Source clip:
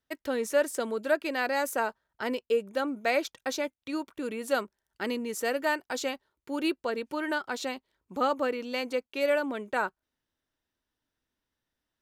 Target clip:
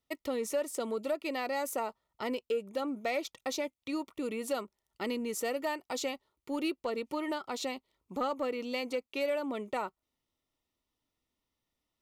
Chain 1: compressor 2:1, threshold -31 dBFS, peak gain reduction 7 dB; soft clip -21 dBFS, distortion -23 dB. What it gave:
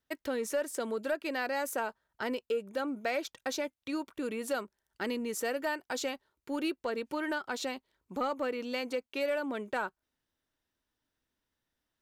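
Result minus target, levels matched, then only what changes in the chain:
2000 Hz band +3.5 dB
add after compressor: Butterworth band-stop 1600 Hz, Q 3.6

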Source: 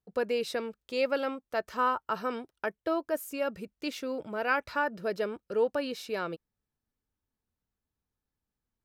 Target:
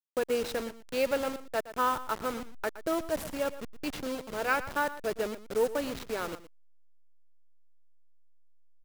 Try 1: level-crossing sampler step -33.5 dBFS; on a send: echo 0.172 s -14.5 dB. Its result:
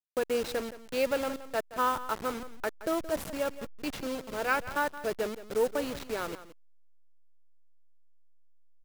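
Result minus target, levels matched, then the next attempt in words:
echo 54 ms late
level-crossing sampler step -33.5 dBFS; on a send: echo 0.118 s -14.5 dB

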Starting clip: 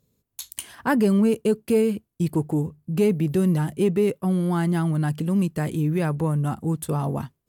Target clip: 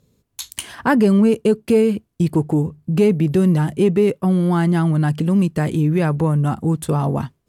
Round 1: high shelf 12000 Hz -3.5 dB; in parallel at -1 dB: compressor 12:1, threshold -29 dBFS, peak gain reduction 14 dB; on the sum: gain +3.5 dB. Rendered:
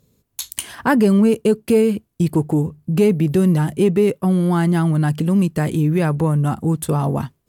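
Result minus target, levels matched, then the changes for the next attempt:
8000 Hz band +3.0 dB
change: high shelf 12000 Hz -15 dB

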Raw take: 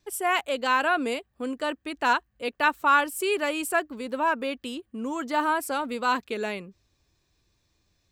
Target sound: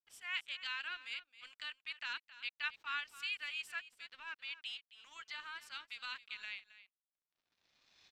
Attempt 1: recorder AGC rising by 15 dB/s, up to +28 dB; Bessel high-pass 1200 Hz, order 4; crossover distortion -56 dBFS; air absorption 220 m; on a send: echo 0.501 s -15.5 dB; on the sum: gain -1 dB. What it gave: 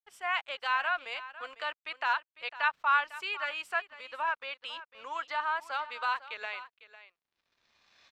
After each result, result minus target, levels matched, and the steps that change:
echo 0.232 s late; 1000 Hz band +9.5 dB
change: echo 0.269 s -15.5 dB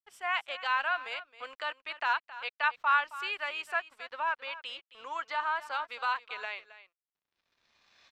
1000 Hz band +9.5 dB
change: Bessel high-pass 3100 Hz, order 4

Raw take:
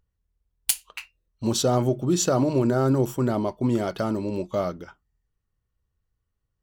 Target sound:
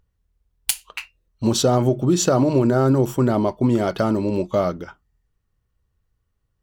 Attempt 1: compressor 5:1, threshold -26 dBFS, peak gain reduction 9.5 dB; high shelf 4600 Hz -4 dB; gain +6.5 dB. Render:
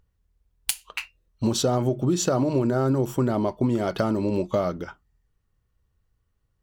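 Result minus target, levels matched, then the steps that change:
compressor: peak gain reduction +5.5 dB
change: compressor 5:1, threshold -19 dBFS, peak gain reduction 4 dB

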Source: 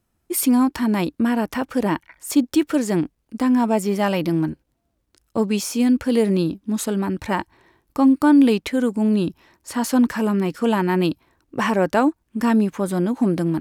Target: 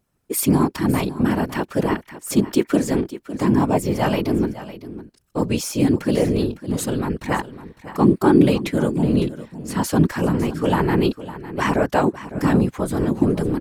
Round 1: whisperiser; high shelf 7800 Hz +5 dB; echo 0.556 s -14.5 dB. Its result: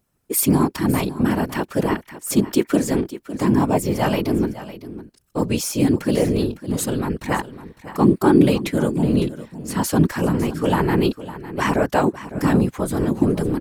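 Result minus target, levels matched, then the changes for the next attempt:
8000 Hz band +2.5 dB
remove: high shelf 7800 Hz +5 dB

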